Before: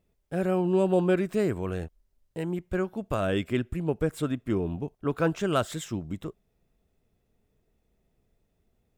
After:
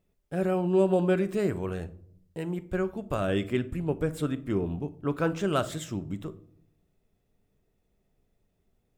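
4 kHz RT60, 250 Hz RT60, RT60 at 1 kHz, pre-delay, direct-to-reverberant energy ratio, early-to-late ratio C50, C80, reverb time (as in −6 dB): 0.35 s, 0.95 s, 0.55 s, 5 ms, 11.0 dB, 17.5 dB, 21.5 dB, 0.65 s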